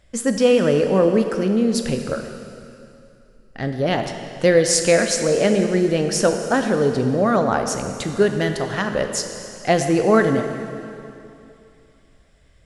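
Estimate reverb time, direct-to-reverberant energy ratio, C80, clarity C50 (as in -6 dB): 2.7 s, 5.5 dB, 7.0 dB, 6.5 dB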